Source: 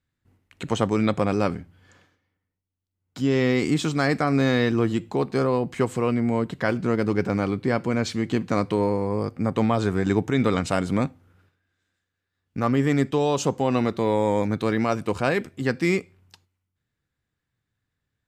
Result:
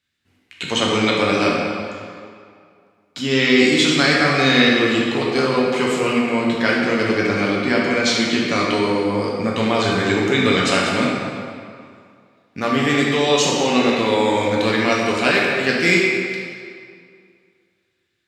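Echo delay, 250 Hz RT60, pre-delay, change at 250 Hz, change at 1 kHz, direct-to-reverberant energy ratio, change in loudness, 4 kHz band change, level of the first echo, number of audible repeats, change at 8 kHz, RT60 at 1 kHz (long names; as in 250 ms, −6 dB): no echo audible, 2.1 s, 6 ms, +4.0 dB, +6.5 dB, −4.0 dB, +6.0 dB, +16.0 dB, no echo audible, no echo audible, +11.0 dB, 2.3 s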